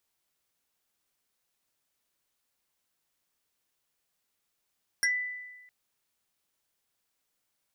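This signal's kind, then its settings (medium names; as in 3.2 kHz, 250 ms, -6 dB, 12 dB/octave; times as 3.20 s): FM tone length 0.66 s, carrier 1.99 kHz, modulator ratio 1.82, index 2.3, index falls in 0.14 s exponential, decay 1.22 s, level -21.5 dB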